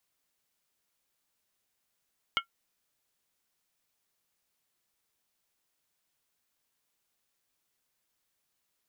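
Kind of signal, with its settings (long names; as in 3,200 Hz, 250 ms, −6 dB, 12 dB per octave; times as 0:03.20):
struck skin, lowest mode 1,370 Hz, modes 4, decay 0.11 s, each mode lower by 0.5 dB, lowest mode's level −23.5 dB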